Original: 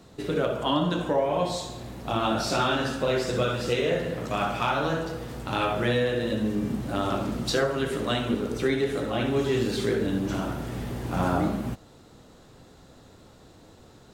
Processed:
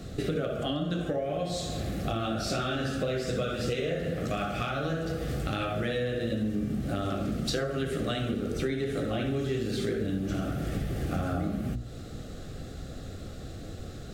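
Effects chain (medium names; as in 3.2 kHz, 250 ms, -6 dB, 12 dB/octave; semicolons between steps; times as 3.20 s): bass shelf 150 Hz +11.5 dB; hum notches 60/120/180/240/300/360/420 Hz; compression, threshold -35 dBFS, peak gain reduction 16 dB; Butterworth band-stop 950 Hz, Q 2.7; trim +7 dB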